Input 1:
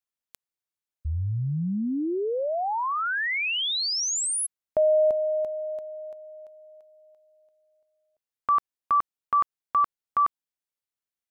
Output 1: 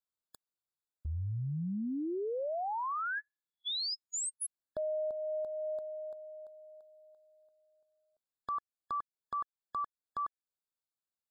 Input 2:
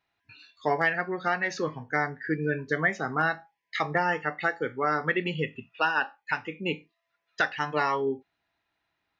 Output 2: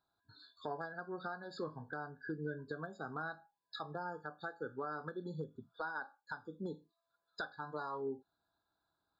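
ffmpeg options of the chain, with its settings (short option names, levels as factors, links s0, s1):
-af "acompressor=threshold=0.0355:ratio=6:attack=0.65:release=719:knee=1:detection=peak,afftfilt=real='re*eq(mod(floor(b*sr/1024/1700),2),0)':imag='im*eq(mod(floor(b*sr/1024/1700),2),0)':win_size=1024:overlap=0.75,volume=0.631"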